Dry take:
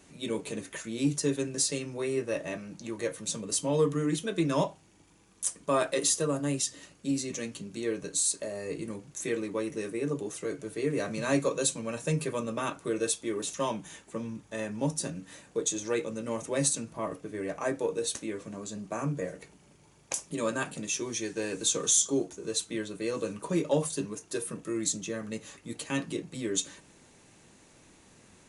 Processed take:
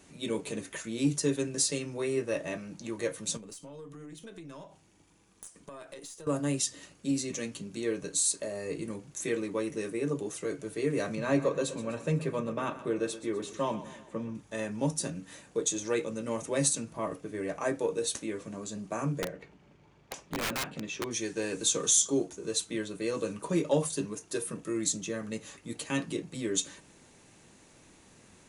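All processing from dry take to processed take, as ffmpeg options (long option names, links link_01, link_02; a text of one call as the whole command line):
ffmpeg -i in.wav -filter_complex "[0:a]asettb=1/sr,asplit=3[link_01][link_02][link_03];[link_01]atrim=end=3.374[link_04];[link_02]atrim=start=3.37:end=6.27,asetpts=PTS-STARTPTS,afade=type=in:duration=0.004:curve=qsin,afade=type=out:start_time=2.896:duration=0.004:curve=qsin,acompressor=threshold=-40dB:ratio=8:attack=3.2:release=140:knee=1:detection=peak,aeval=exprs='(tanh(22.4*val(0)+0.6)-tanh(0.6))/22.4':channel_layout=same[link_05];[link_03]atrim=start=6.266[link_06];[link_04][link_05]acrossfade=duration=0.004:curve1=hsin:curve2=qsin[link_07];[link_07][link_06]acrossfade=duration=0.004:curve1=qsin:curve2=hsin,asettb=1/sr,asplit=3[link_08][link_09][link_10];[link_08]atrim=end=11.154[link_11];[link_09]atrim=start=11.15:end=14.35,asetpts=PTS-STARTPTS,afade=type=in:duration=0.004:curve=qsin,afade=type=out:start_time=3.196:duration=0.004:curve=qsin,lowpass=frequency=2100:poles=1,aecho=1:1:125|250|375|500|625:0.2|0.102|0.0519|0.0265|0.0135,atrim=end_sample=141120[link_12];[link_10]atrim=start=14.346[link_13];[link_11][link_12]acrossfade=duration=0.004:curve1=hsin:curve2=qsin[link_14];[link_14][link_13]acrossfade=duration=0.004:curve1=qsin:curve2=hsin,asettb=1/sr,asplit=3[link_15][link_16][link_17];[link_15]atrim=end=19.224[link_18];[link_16]atrim=start=19.22:end=21.11,asetpts=PTS-STARTPTS,afade=type=in:duration=0.004:curve=qsin,afade=type=out:start_time=1.886:duration=0.004:curve=qsin,lowpass=3100,aeval=exprs='(mod(21.1*val(0)+1,2)-1)/21.1':channel_layout=same[link_19];[link_17]atrim=start=21.106[link_20];[link_18][link_19]acrossfade=duration=0.004:curve1=hsin:curve2=qsin[link_21];[link_21][link_20]acrossfade=duration=0.004:curve1=qsin:curve2=hsin" out.wav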